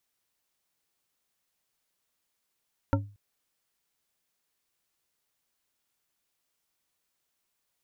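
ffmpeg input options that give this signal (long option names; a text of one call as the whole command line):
ffmpeg -f lavfi -i "aevalsrc='0.0944*pow(10,-3*t/0.38)*sin(2*PI*102*t)+0.0794*pow(10,-3*t/0.187)*sin(2*PI*281.2*t)+0.0668*pow(10,-3*t/0.117)*sin(2*PI*551.2*t)+0.0562*pow(10,-3*t/0.082)*sin(2*PI*911.2*t)+0.0473*pow(10,-3*t/0.062)*sin(2*PI*1360.7*t)':duration=0.23:sample_rate=44100" out.wav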